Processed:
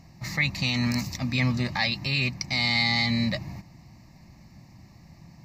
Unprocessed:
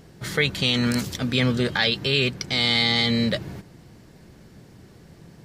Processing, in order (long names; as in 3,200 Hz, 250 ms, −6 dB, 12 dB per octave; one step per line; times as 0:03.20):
phaser with its sweep stopped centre 2,200 Hz, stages 8
harmonic generator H 4 −37 dB, 6 −42 dB, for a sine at −10.5 dBFS